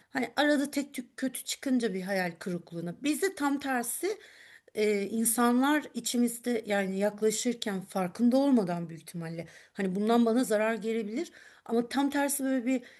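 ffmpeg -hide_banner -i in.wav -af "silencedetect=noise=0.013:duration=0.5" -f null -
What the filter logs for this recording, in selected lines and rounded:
silence_start: 4.14
silence_end: 4.75 | silence_duration: 0.61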